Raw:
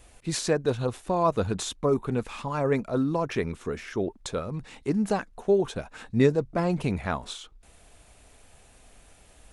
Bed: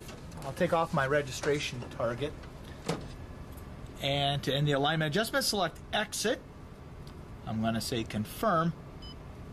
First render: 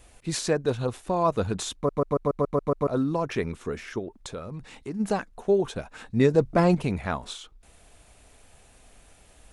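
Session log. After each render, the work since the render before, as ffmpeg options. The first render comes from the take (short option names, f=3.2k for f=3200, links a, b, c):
-filter_complex "[0:a]asplit=3[a][b][c];[a]afade=t=out:st=3.98:d=0.02[d];[b]acompressor=threshold=-36dB:ratio=2:attack=3.2:release=140:knee=1:detection=peak,afade=t=in:st=3.98:d=0.02,afade=t=out:st=4.99:d=0.02[e];[c]afade=t=in:st=4.99:d=0.02[f];[d][e][f]amix=inputs=3:normalize=0,asettb=1/sr,asplit=3[g][h][i];[g]atrim=end=6.344[j];[h]atrim=start=6.34:end=6.75,asetpts=PTS-STARTPTS,afade=t=in:d=0.004:c=qsin,afade=t=out:st=0.406:d=0.004:c=qsin,acontrast=48[k];[i]atrim=start=6.746[l];[j][k]acrossfade=d=0.004:c1=hsin:c2=qsin[m];[m][l]acrossfade=d=0.004:c1=qsin:c2=hsin,asplit=9[n][o][p][q][r][s][t][u][v];[n]atrim=end=1.892[w];[o]atrim=start=1.748:end=1.892[x];[p]atrim=start=1.748:end=1.892[y];[q]atrim=start=1.748:end=1.892[z];[r]atrim=start=1.748:end=1.892[aa];[s]atrim=start=1.748:end=1.892[ab];[t]atrim=start=1.748:end=1.892[ac];[u]atrim=start=1.748:end=1.892[ad];[v]atrim=start=2.868[ae];[w][x]acrossfade=d=0.004:c1=hsin:c2=hsin[af];[af][y]acrossfade=d=0.004:c1=hsin:c2=hsin[ag];[ag][z]acrossfade=d=0.004:c1=hsin:c2=hsin[ah];[ah][aa]acrossfade=d=0.004:c1=hsin:c2=hsin[ai];[ai][ab]acrossfade=d=0.004:c1=hsin:c2=hsin[aj];[aj][ac]acrossfade=d=0.004:c1=hsin:c2=hsin[ak];[ak][ad]acrossfade=d=0.004:c1=hsin:c2=hsin[al];[al][ae]acrossfade=d=0.004:c1=hsin:c2=hsin"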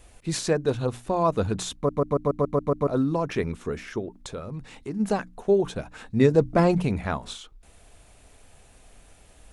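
-af "lowshelf=f=380:g=3,bandreject=f=60:t=h:w=6,bandreject=f=120:t=h:w=6,bandreject=f=180:t=h:w=6,bandreject=f=240:t=h:w=6,bandreject=f=300:t=h:w=6"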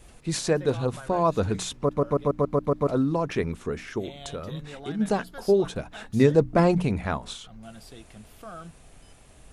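-filter_complex "[1:a]volume=-14dB[a];[0:a][a]amix=inputs=2:normalize=0"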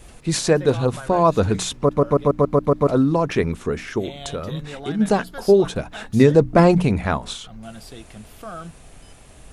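-af "volume=6.5dB,alimiter=limit=-2dB:level=0:latency=1"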